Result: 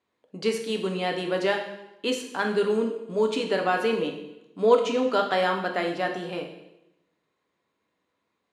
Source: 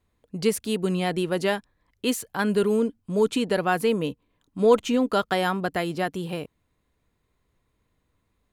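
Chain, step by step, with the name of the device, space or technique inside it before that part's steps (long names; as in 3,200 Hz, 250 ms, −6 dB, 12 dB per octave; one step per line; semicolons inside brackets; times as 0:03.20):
supermarket ceiling speaker (band-pass filter 300–5,800 Hz; convolution reverb RT60 0.90 s, pre-delay 7 ms, DRR 2.5 dB)
level −1 dB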